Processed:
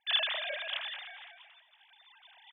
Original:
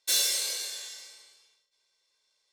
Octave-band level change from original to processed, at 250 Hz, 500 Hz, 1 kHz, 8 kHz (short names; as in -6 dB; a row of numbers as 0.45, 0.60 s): n/a, +4.5 dB, +8.5 dB, under -40 dB